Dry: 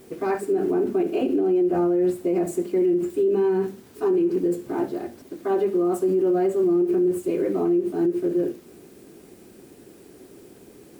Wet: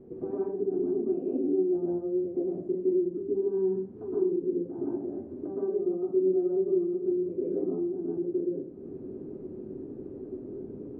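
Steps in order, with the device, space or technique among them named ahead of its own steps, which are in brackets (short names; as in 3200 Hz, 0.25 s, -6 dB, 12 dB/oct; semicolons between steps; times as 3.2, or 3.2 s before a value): television next door (compressor 3:1, threshold -40 dBFS, peak gain reduction 16 dB; LPF 450 Hz 12 dB/oct; reverb RT60 0.45 s, pre-delay 0.111 s, DRR -6.5 dB)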